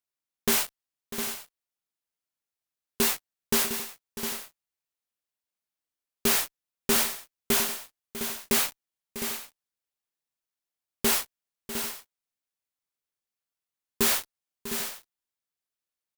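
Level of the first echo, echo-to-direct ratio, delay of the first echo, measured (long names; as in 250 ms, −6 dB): −13.5 dB, −7.0 dB, 647 ms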